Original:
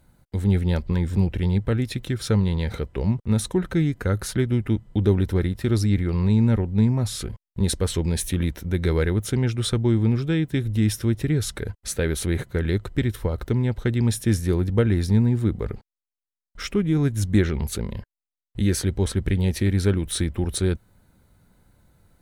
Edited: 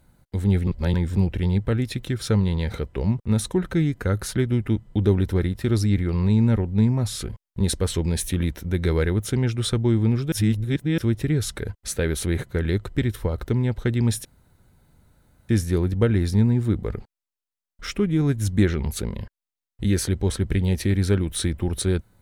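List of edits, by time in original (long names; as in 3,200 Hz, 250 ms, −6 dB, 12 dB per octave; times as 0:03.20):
0:00.67–0:00.94: reverse
0:10.32–0:10.98: reverse
0:14.25: splice in room tone 1.24 s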